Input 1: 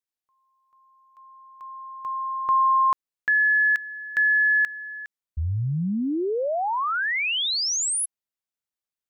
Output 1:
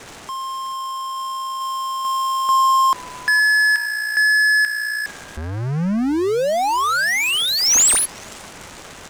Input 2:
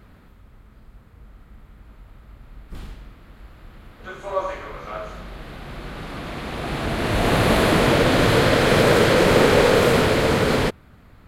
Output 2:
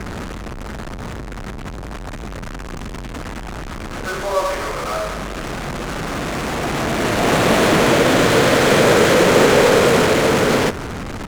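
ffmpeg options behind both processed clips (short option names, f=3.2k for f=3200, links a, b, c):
-filter_complex "[0:a]aeval=exprs='val(0)+0.5*0.075*sgn(val(0))':c=same,lowpass=9.5k,acrossover=split=140|3300[a][b][c];[a]acompressor=threshold=-34dB:ratio=6:release=70[d];[c]aexciter=amount=3.5:drive=4.8:freq=6.1k[e];[d][b][e]amix=inputs=3:normalize=0,asplit=4[f][g][h][i];[g]adelay=466,afreqshift=-59,volume=-20.5dB[j];[h]adelay=932,afreqshift=-118,volume=-29.9dB[k];[i]adelay=1398,afreqshift=-177,volume=-39.2dB[l];[f][j][k][l]amix=inputs=4:normalize=0,adynamicsmooth=sensitivity=4:basefreq=920,volume=2dB"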